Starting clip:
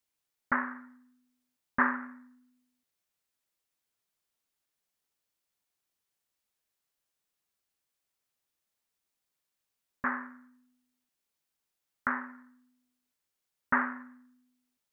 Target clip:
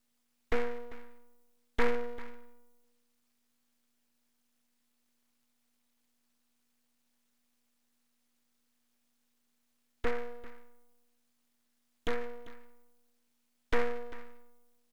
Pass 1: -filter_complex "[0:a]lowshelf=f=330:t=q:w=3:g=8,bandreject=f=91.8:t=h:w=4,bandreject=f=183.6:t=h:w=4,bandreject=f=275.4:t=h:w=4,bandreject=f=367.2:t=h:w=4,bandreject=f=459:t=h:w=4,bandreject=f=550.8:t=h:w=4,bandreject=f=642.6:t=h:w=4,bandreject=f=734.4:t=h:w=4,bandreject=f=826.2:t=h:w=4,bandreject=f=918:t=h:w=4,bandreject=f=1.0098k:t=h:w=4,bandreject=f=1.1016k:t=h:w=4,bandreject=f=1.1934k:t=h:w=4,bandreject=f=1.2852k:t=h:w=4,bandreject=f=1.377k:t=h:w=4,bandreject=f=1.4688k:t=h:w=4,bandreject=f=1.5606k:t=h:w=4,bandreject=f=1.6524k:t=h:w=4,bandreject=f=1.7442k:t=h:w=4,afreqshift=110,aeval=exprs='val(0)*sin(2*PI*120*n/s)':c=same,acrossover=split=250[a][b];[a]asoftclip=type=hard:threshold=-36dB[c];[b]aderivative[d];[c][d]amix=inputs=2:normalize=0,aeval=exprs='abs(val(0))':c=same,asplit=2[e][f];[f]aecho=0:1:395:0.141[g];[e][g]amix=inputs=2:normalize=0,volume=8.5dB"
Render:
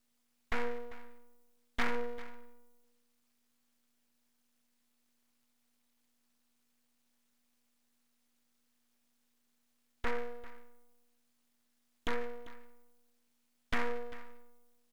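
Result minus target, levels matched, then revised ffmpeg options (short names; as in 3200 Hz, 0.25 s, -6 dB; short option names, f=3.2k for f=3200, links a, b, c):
hard clip: distortion +12 dB
-filter_complex "[0:a]lowshelf=f=330:t=q:w=3:g=8,bandreject=f=91.8:t=h:w=4,bandreject=f=183.6:t=h:w=4,bandreject=f=275.4:t=h:w=4,bandreject=f=367.2:t=h:w=4,bandreject=f=459:t=h:w=4,bandreject=f=550.8:t=h:w=4,bandreject=f=642.6:t=h:w=4,bandreject=f=734.4:t=h:w=4,bandreject=f=826.2:t=h:w=4,bandreject=f=918:t=h:w=4,bandreject=f=1.0098k:t=h:w=4,bandreject=f=1.1016k:t=h:w=4,bandreject=f=1.1934k:t=h:w=4,bandreject=f=1.2852k:t=h:w=4,bandreject=f=1.377k:t=h:w=4,bandreject=f=1.4688k:t=h:w=4,bandreject=f=1.5606k:t=h:w=4,bandreject=f=1.6524k:t=h:w=4,bandreject=f=1.7442k:t=h:w=4,afreqshift=110,aeval=exprs='val(0)*sin(2*PI*120*n/s)':c=same,acrossover=split=250[a][b];[a]asoftclip=type=hard:threshold=-28dB[c];[b]aderivative[d];[c][d]amix=inputs=2:normalize=0,aeval=exprs='abs(val(0))':c=same,asplit=2[e][f];[f]aecho=0:1:395:0.141[g];[e][g]amix=inputs=2:normalize=0,volume=8.5dB"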